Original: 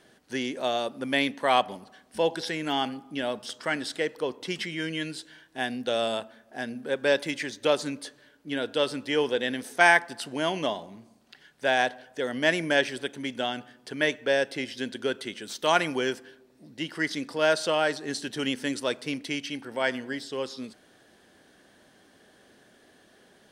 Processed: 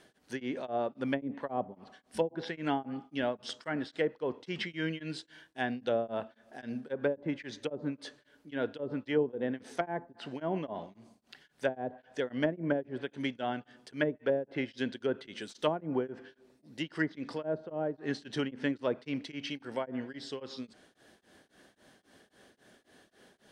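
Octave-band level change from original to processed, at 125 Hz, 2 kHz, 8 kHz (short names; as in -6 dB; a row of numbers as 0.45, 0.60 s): -0.5 dB, -12.5 dB, under -15 dB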